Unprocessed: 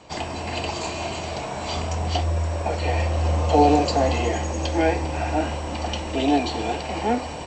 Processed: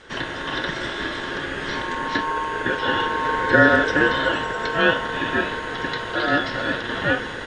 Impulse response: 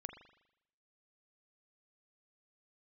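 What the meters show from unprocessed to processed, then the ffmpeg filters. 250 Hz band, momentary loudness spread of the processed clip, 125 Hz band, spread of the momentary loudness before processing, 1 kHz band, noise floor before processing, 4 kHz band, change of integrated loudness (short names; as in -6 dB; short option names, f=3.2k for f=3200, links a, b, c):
-1.0 dB, 11 LU, -8.5 dB, 10 LU, +0.5 dB, -32 dBFS, +3.5 dB, +2.0 dB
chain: -filter_complex "[0:a]equalizer=f=250:t=o:w=1:g=-7,equalizer=f=500:t=o:w=1:g=9,equalizer=f=2k:t=o:w=1:g=11,acrossover=split=4000[a][b];[b]acompressor=threshold=-47dB:ratio=4:attack=1:release=60[c];[a][c]amix=inputs=2:normalize=0,aeval=exprs='val(0)*sin(2*PI*1000*n/s)':c=same"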